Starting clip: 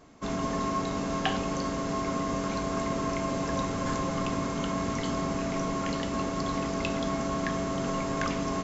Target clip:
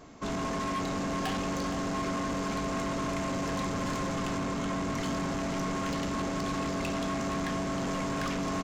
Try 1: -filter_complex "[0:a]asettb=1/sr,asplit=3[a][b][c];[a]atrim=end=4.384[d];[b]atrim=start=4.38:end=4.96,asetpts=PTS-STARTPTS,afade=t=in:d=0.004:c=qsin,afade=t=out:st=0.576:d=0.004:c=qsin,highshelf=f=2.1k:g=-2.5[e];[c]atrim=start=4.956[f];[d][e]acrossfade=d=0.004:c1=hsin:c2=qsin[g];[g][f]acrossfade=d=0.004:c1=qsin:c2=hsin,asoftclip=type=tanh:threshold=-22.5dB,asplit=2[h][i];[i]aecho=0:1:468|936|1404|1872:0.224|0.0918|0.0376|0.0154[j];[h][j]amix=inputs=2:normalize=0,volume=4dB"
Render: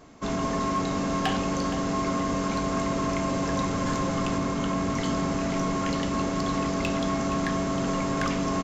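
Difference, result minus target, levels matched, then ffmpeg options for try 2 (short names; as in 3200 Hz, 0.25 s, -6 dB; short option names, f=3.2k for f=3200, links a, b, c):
soft clip: distortion -11 dB
-filter_complex "[0:a]asettb=1/sr,asplit=3[a][b][c];[a]atrim=end=4.384[d];[b]atrim=start=4.38:end=4.96,asetpts=PTS-STARTPTS,afade=t=in:d=0.004:c=qsin,afade=t=out:st=0.576:d=0.004:c=qsin,highshelf=f=2.1k:g=-2.5[e];[c]atrim=start=4.956[f];[d][e]acrossfade=d=0.004:c1=hsin:c2=qsin[g];[g][f]acrossfade=d=0.004:c1=qsin:c2=hsin,asoftclip=type=tanh:threshold=-33.5dB,asplit=2[h][i];[i]aecho=0:1:468|936|1404|1872:0.224|0.0918|0.0376|0.0154[j];[h][j]amix=inputs=2:normalize=0,volume=4dB"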